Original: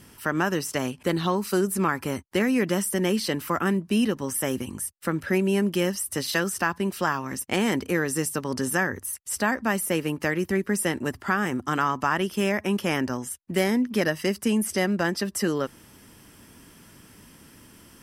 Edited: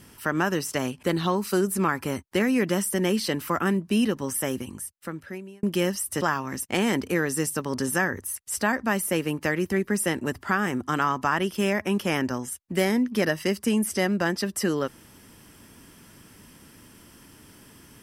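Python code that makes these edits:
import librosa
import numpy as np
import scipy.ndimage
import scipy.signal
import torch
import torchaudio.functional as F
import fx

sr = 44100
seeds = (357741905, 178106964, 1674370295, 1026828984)

y = fx.edit(x, sr, fx.fade_out_span(start_s=4.32, length_s=1.31),
    fx.cut(start_s=6.21, length_s=0.79), tone=tone)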